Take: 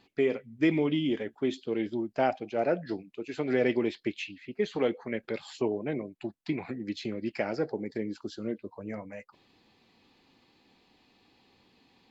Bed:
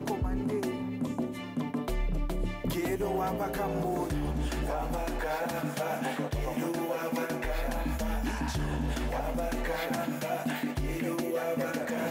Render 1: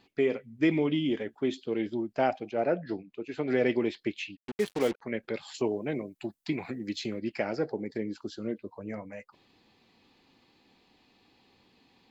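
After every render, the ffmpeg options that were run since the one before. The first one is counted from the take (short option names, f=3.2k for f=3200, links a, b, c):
-filter_complex "[0:a]asettb=1/sr,asplit=3[a][b][c];[a]atrim=end=2.514[d];[b]atrim=start=2.51:end=3.48,asetpts=PTS-STARTPTS,afade=t=in:d=0.004:c=qsin,afade=t=out:st=0.966:d=0.004:c=qsin,lowpass=f=3.2k:p=1[e];[c]atrim=start=3.476[f];[d][e]acrossfade=d=0.004:c1=hsin:c2=qsin[g];[g][f]acrossfade=d=0.004:c1=qsin:c2=hsin,asplit=3[h][i][j];[h]afade=t=out:st=4.35:d=0.02[k];[i]acrusher=bits=5:mix=0:aa=0.5,afade=t=in:st=4.35:d=0.02,afade=t=out:st=5.01:d=0.02[l];[j]afade=t=in:st=5.01:d=0.02[m];[k][l][m]amix=inputs=3:normalize=0,asettb=1/sr,asplit=3[n][o][p];[n]atrim=end=5.544[q];[o]atrim=start=5.54:end=7.19,asetpts=PTS-STARTPTS,afade=t=in:d=0.004:c=qsin,afade=t=out:st=1.646:d=0.004:c=qsin,highshelf=f=5.4k:g=11.5[r];[p]atrim=start=7.186[s];[q][r]acrossfade=d=0.004:c1=hsin:c2=qsin[t];[t][s]acrossfade=d=0.004:c1=qsin:c2=hsin"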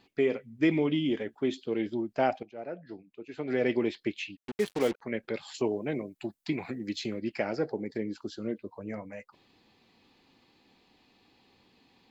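-filter_complex "[0:a]asplit=2[a][b];[a]atrim=end=2.43,asetpts=PTS-STARTPTS,afade=t=out:st=2.426:d=0.004:c=hsin:silence=0.237137[c];[b]atrim=start=2.43,asetpts=PTS-STARTPTS,afade=t=in:d=1.36:c=qua:silence=0.237137[d];[c][d]concat=n=2:v=0:a=1"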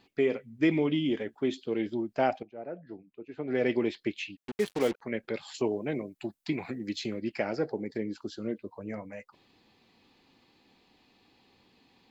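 -filter_complex "[0:a]asettb=1/sr,asplit=3[a][b][c];[a]atrim=end=2.424[d];[b]atrim=start=2.42:end=3.55,asetpts=PTS-STARTPTS,afade=t=in:d=0.004:c=qsin,afade=t=out:st=1.126:d=0.004:c=qsin,lowpass=f=1.3k:p=1[e];[c]atrim=start=3.546[f];[d][e]acrossfade=d=0.004:c1=hsin:c2=qsin[g];[g][f]acrossfade=d=0.004:c1=qsin:c2=hsin"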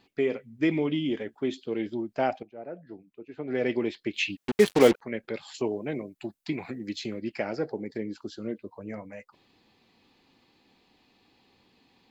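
-filter_complex "[0:a]asplit=3[a][b][c];[a]atrim=end=4.142[d];[b]atrim=start=4.138:end=5.002,asetpts=PTS-STARTPTS,volume=9.5dB[e];[c]atrim=start=4.998[f];[d][e]acrossfade=d=0.004:c1=hsin:c2=hsin[g];[g][f]acrossfade=d=0.004:c1=hsin:c2=hsin"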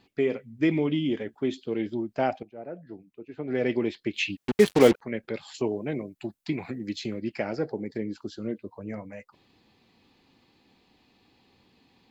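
-af "equalizer=f=82:w=0.41:g=4.5"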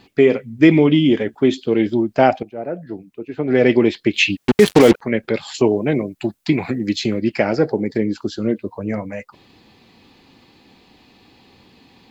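-af "alimiter=level_in=12.5dB:limit=-1dB:release=50:level=0:latency=1"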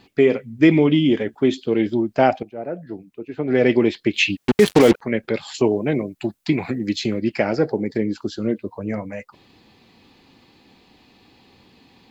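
-af "volume=-2.5dB"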